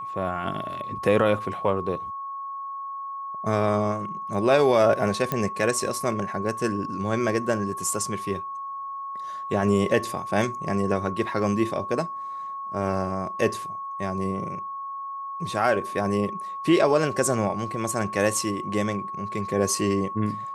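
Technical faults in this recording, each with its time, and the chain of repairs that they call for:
tone 1100 Hz -31 dBFS
5.32 pop -11 dBFS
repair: de-click; notch 1100 Hz, Q 30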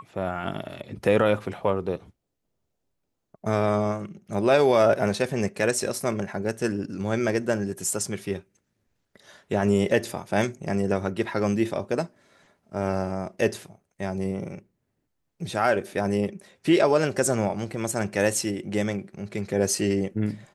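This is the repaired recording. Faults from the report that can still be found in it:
none

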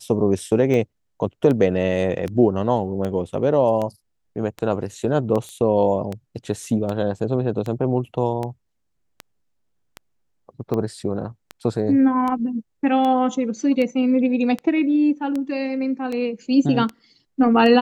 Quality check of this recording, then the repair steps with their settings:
tick 78 rpm -15 dBFS
5.49 pop -22 dBFS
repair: de-click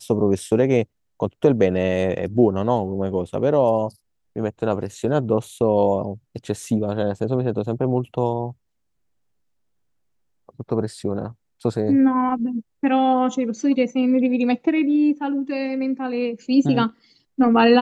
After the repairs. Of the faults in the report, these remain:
none

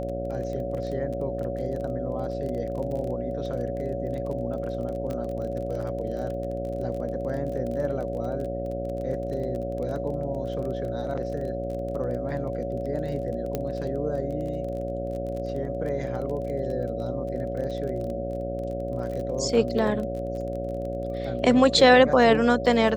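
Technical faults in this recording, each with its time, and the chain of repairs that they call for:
buzz 60 Hz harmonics 12 -33 dBFS
crackle 24/s -33 dBFS
tone 560 Hz -31 dBFS
5.11 pop -21 dBFS
13.55 pop -14 dBFS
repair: de-click; de-hum 60 Hz, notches 12; notch 560 Hz, Q 30

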